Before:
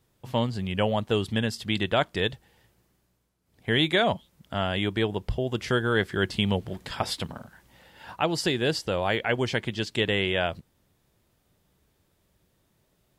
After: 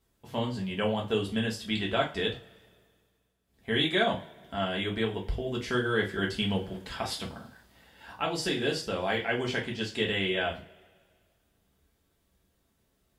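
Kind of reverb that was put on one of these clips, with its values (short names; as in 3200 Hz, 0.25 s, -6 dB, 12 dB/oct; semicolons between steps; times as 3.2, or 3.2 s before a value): two-slope reverb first 0.28 s, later 1.9 s, from -27 dB, DRR -2 dB; gain -7.5 dB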